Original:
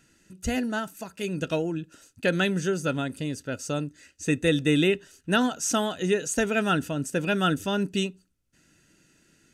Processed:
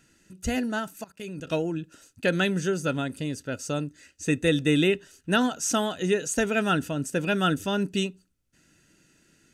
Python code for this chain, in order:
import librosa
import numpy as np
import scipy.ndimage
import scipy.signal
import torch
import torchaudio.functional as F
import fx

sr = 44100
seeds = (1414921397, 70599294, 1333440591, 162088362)

y = fx.level_steps(x, sr, step_db=18, at=(1.04, 1.47))